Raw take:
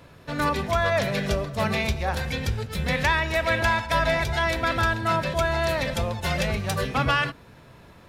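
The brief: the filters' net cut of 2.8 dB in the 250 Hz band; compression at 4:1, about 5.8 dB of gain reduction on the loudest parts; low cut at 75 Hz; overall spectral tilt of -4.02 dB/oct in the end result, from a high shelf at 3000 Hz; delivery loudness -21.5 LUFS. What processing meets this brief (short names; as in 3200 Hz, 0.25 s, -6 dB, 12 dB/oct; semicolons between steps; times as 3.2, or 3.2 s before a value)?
HPF 75 Hz; bell 250 Hz -4 dB; high shelf 3000 Hz +3.5 dB; compressor 4:1, threshold -25 dBFS; gain +7 dB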